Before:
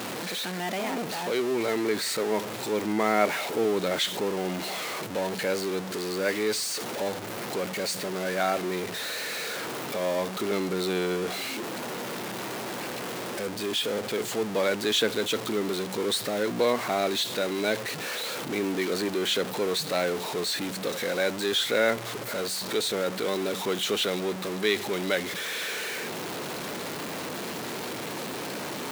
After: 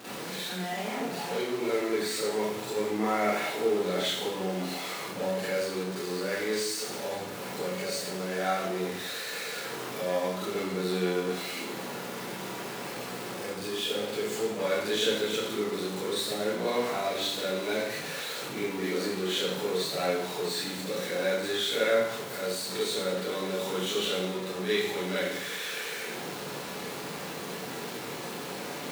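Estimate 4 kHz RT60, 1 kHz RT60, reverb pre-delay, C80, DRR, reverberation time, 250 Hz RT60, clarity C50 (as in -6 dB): 0.80 s, 0.80 s, 37 ms, 3.0 dB, -10.0 dB, 0.80 s, 0.80 s, -0.5 dB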